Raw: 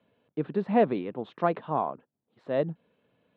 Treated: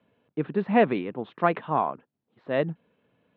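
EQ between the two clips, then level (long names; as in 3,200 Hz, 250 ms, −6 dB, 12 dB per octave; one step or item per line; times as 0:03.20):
low-pass filter 3,400 Hz 12 dB per octave
dynamic equaliser 2,400 Hz, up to +8 dB, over −45 dBFS, Q 0.73
parametric band 570 Hz −2.5 dB
+2.5 dB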